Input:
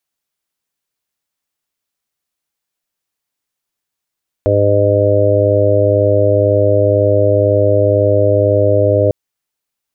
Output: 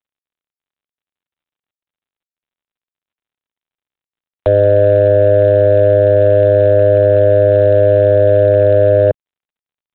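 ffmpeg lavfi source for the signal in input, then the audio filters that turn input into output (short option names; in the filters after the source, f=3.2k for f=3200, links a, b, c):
-f lavfi -i "aevalsrc='0.188*sin(2*PI*102*t)+0.0211*sin(2*PI*204*t)+0.1*sin(2*PI*306*t)+0.126*sin(2*PI*408*t)+0.211*sin(2*PI*510*t)+0.211*sin(2*PI*612*t)':d=4.65:s=44100"
-filter_complex "[0:a]acrossover=split=160|450[a][b][c];[b]alimiter=limit=-21dB:level=0:latency=1:release=73[d];[c]acontrast=74[e];[a][d][e]amix=inputs=3:normalize=0" -ar 8000 -c:a adpcm_g726 -b:a 32k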